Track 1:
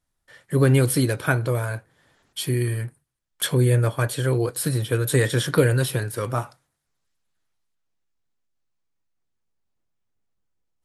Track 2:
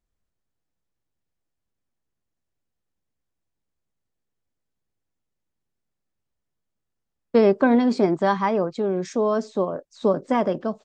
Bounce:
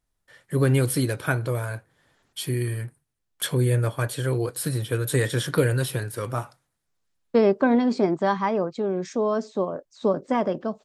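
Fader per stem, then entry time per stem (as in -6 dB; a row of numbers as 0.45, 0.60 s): -3.0, -2.0 dB; 0.00, 0.00 s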